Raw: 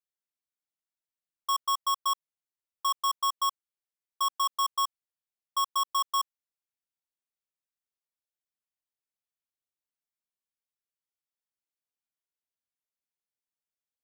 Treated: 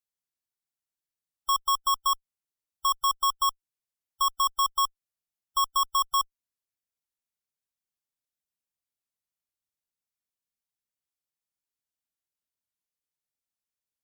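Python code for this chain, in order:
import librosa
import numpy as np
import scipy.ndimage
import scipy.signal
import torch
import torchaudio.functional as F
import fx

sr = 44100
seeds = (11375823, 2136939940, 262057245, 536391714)

y = fx.cheby_harmonics(x, sr, harmonics=(2, 3, 6, 7), levels_db=(-38, -7, -25, -25), full_scale_db=-25.0)
y = fx.spec_gate(y, sr, threshold_db=-30, keep='strong')
y = fx.bass_treble(y, sr, bass_db=6, treble_db=4)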